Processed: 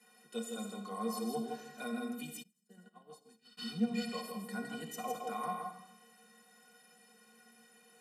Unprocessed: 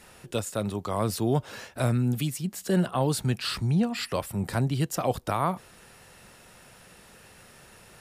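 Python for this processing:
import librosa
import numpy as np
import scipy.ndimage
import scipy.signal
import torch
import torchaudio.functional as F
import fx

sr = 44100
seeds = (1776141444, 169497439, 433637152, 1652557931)

y = scipy.signal.sosfilt(scipy.signal.butter(16, 150.0, 'highpass', fs=sr, output='sos'), x)
y = fx.stiff_resonator(y, sr, f0_hz=220.0, decay_s=0.22, stiffness=0.03)
y = y + 10.0 ** (-5.0 / 20.0) * np.pad(y, (int(162 * sr / 1000.0), 0))[:len(y)]
y = fx.rev_freeverb(y, sr, rt60_s=0.82, hf_ratio=0.9, predelay_ms=15, drr_db=5.5)
y = fx.upward_expand(y, sr, threshold_db=-48.0, expansion=2.5, at=(2.42, 3.57), fade=0.02)
y = F.gain(torch.from_numpy(y), -1.0).numpy()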